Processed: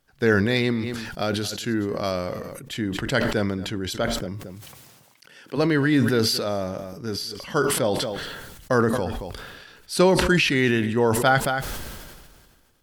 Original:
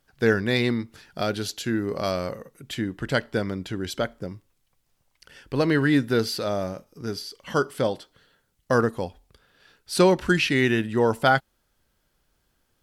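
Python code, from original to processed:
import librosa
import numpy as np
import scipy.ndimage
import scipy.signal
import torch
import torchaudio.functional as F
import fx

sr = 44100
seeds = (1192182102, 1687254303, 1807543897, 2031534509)

y = fx.highpass(x, sr, hz=fx.line((4.25, 55.0), (5.56, 180.0)), slope=24, at=(4.25, 5.56), fade=0.02)
y = y + 10.0 ** (-21.0 / 20.0) * np.pad(y, (int(226 * sr / 1000.0), 0))[:len(y)]
y = fx.sustainer(y, sr, db_per_s=33.0)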